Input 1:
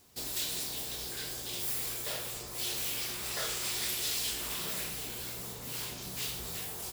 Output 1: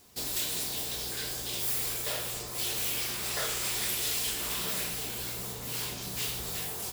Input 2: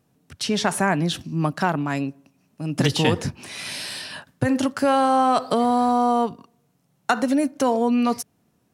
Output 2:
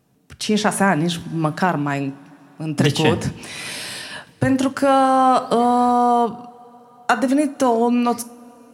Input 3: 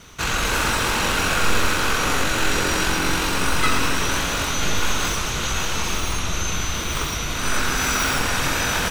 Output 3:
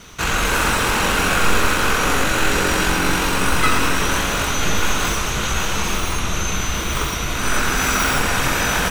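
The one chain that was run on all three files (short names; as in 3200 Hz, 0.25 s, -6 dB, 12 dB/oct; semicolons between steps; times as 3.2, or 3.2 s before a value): de-hum 55.57 Hz, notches 4; dynamic EQ 4600 Hz, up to -4 dB, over -39 dBFS, Q 1.2; two-slope reverb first 0.34 s, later 4.8 s, from -21 dB, DRR 13.5 dB; gain +3.5 dB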